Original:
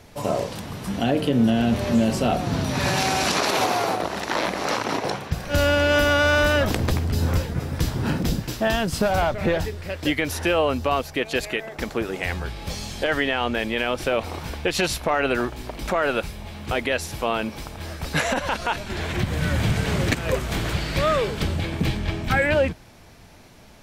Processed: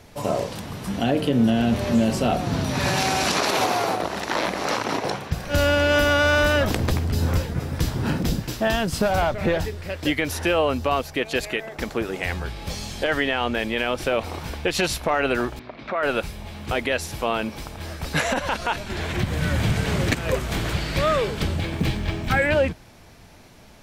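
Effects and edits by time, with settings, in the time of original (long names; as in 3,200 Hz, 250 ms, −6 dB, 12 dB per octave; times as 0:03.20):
0:15.59–0:16.03: loudspeaker in its box 160–3,500 Hz, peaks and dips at 180 Hz −8 dB, 330 Hz −6 dB, 470 Hz −6 dB, 850 Hz −7 dB, 1,700 Hz −3 dB, 3,000 Hz −8 dB
0:21.59–0:22.37: log-companded quantiser 8 bits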